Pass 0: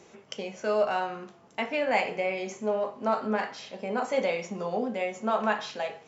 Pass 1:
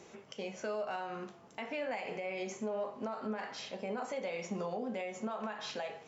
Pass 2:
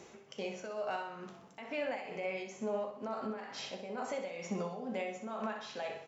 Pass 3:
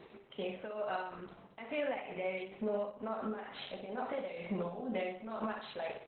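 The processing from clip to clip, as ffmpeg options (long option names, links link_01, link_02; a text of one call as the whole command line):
ffmpeg -i in.wav -af "acompressor=threshold=-27dB:ratio=6,alimiter=level_in=4dB:limit=-24dB:level=0:latency=1:release=198,volume=-4dB,volume=-1dB" out.wav
ffmpeg -i in.wav -af "tremolo=f=2.2:d=0.61,aecho=1:1:63|126|189|252|315|378:0.355|0.174|0.0852|0.0417|0.0205|0.01,volume=1.5dB" out.wav
ffmpeg -i in.wav -af "volume=1.5dB" -ar 48000 -c:a libopus -b:a 8k out.opus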